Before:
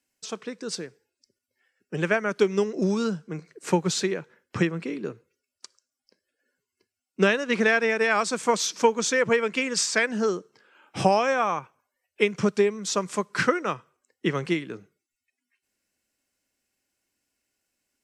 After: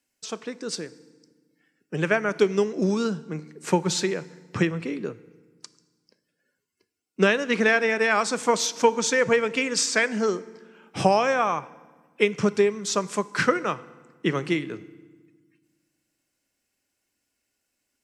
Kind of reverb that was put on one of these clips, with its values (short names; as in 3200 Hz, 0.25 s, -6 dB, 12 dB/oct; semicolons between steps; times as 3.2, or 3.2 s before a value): FDN reverb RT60 1.4 s, low-frequency decay 1.5×, high-frequency decay 0.8×, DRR 16.5 dB; gain +1 dB